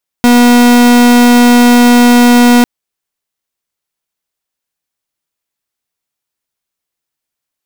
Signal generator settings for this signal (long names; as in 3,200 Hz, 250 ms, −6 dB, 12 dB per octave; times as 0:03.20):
pulse wave 242 Hz, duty 42% −5 dBFS 2.40 s